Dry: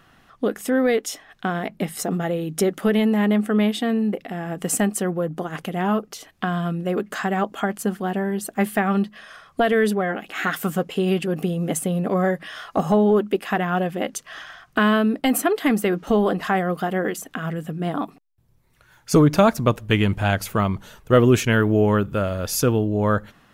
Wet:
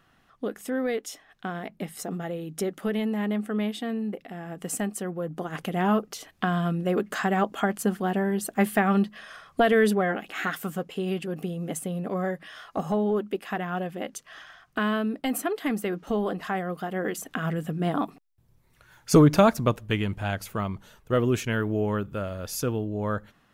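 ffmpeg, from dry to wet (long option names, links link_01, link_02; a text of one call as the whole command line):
ffmpeg -i in.wav -af "volume=5.5dB,afade=type=in:start_time=5.14:duration=0.61:silence=0.446684,afade=type=out:start_time=10.08:duration=0.58:silence=0.473151,afade=type=in:start_time=16.91:duration=0.43:silence=0.446684,afade=type=out:start_time=19.19:duration=0.85:silence=0.421697" out.wav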